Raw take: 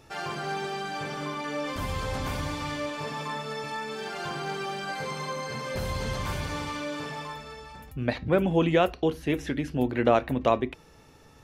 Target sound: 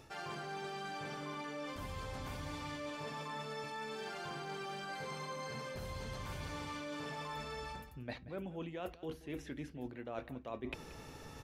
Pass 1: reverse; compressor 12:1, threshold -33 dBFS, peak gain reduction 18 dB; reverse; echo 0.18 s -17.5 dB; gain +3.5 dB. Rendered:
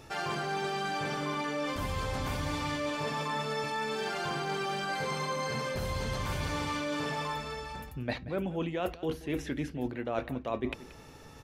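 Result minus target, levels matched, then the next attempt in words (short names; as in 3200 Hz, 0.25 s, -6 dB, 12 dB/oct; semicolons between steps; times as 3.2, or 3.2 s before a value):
compressor: peak gain reduction -10 dB
reverse; compressor 12:1, threshold -44 dBFS, peak gain reduction 28 dB; reverse; echo 0.18 s -17.5 dB; gain +3.5 dB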